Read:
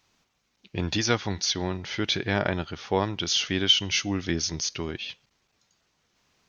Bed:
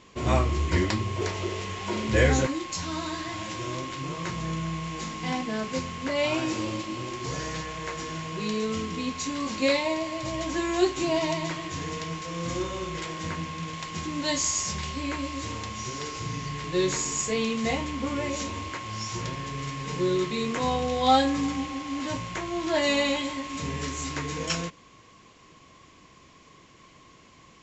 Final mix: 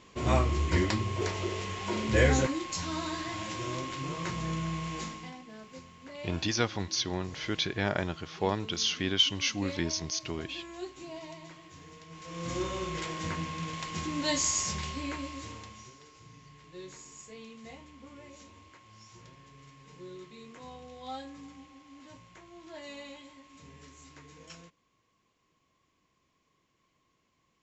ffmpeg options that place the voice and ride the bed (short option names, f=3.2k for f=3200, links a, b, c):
-filter_complex "[0:a]adelay=5500,volume=-4.5dB[a];[1:a]volume=13dB,afade=t=out:st=4.99:d=0.33:silence=0.177828,afade=t=in:st=12.08:d=0.59:silence=0.16788,afade=t=out:st=14.62:d=1.36:silence=0.11885[b];[a][b]amix=inputs=2:normalize=0"